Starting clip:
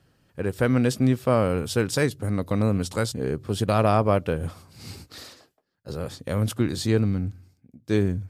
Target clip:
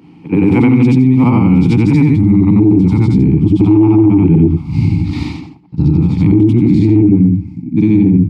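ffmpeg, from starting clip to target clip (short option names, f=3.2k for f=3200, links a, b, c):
-filter_complex "[0:a]afftfilt=real='re':imag='-im':win_size=8192:overlap=0.75,asubboost=boost=12:cutoff=130,lowpass=12k,acrossover=split=100[a][b];[a]dynaudnorm=f=240:g=17:m=17dB[c];[c][b]amix=inputs=2:normalize=0,equalizer=f=170:t=o:w=0.5:g=13,asplit=2[d][e];[e]aeval=exprs='1.58*sin(PI/2*3.55*val(0)/1.58)':c=same,volume=-10.5dB[f];[d][f]amix=inputs=2:normalize=0,acompressor=threshold=-15dB:ratio=16,asplit=3[g][h][i];[g]bandpass=f=300:t=q:w=8,volume=0dB[j];[h]bandpass=f=870:t=q:w=8,volume=-6dB[k];[i]bandpass=f=2.24k:t=q:w=8,volume=-9dB[l];[j][k][l]amix=inputs=3:normalize=0,asplit=2[m][n];[n]adelay=120,highpass=300,lowpass=3.4k,asoftclip=type=hard:threshold=-32dB,volume=-26dB[o];[m][o]amix=inputs=2:normalize=0,alimiter=level_in=31dB:limit=-1dB:release=50:level=0:latency=1,volume=-1dB"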